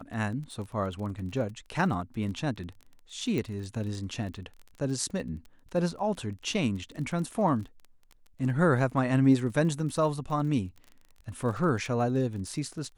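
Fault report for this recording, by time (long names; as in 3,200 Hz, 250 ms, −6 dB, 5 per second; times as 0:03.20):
surface crackle 20 per second −38 dBFS
0:03.38: click −20 dBFS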